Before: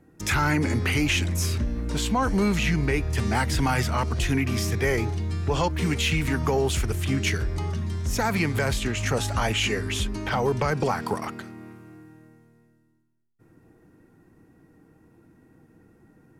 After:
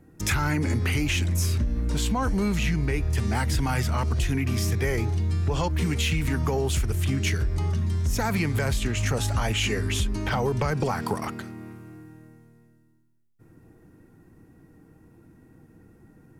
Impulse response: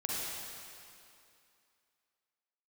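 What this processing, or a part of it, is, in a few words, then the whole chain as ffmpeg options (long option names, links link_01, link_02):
ASMR close-microphone chain: -af "lowshelf=frequency=160:gain=7,acompressor=threshold=-21dB:ratio=6,highshelf=frequency=7900:gain=5"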